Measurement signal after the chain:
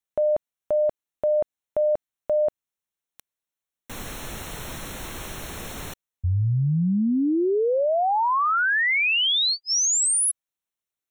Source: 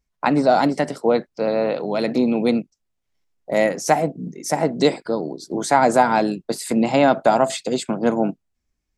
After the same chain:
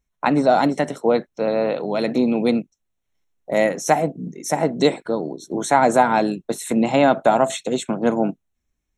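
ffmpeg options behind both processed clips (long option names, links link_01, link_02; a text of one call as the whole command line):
ffmpeg -i in.wav -af "asuperstop=centerf=4800:order=8:qfactor=5" out.wav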